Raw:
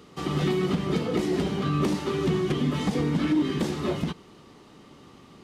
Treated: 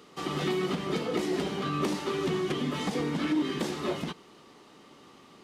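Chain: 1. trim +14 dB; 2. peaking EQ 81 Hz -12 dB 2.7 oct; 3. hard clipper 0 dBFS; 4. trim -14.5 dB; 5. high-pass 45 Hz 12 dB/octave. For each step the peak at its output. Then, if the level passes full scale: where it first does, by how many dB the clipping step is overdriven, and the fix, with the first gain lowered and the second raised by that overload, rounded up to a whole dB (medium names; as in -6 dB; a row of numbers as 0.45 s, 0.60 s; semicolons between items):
-1.5 dBFS, -3.0 dBFS, -3.0 dBFS, -17.5 dBFS, -17.5 dBFS; nothing clips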